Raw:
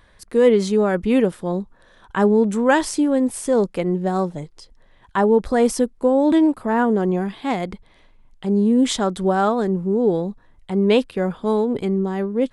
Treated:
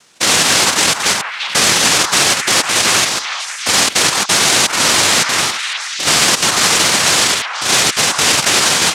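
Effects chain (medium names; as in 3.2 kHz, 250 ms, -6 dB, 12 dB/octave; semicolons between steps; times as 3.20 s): spectrogram pixelated in time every 100 ms; low-pass 3.8 kHz 12 dB/octave; peaking EQ 1.3 kHz -5.5 dB 2.3 oct; noise-vocoded speech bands 1; tempo 1.4×; on a send: repeats whose band climbs or falls 369 ms, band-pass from 1.1 kHz, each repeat 0.7 oct, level -8 dB; on the sum: loudness maximiser +13.5 dB; trim -1 dB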